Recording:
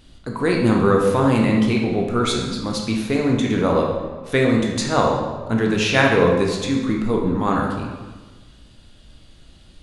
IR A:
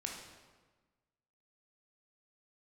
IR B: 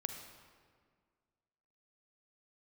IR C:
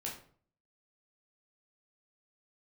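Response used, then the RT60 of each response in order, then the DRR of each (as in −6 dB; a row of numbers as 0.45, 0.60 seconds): A; 1.3, 1.9, 0.50 seconds; −0.5, 5.5, −3.5 decibels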